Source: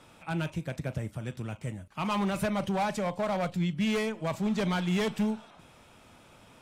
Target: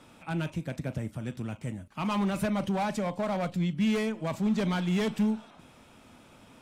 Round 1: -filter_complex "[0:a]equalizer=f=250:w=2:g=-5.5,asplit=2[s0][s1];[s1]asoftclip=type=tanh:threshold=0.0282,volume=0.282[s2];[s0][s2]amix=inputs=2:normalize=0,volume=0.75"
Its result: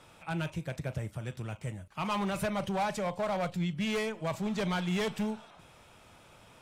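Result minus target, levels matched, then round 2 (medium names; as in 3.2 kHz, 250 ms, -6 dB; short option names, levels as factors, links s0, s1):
250 Hz band -2.5 dB
-filter_complex "[0:a]equalizer=f=250:w=2:g=6,asplit=2[s0][s1];[s1]asoftclip=type=tanh:threshold=0.0282,volume=0.282[s2];[s0][s2]amix=inputs=2:normalize=0,volume=0.75"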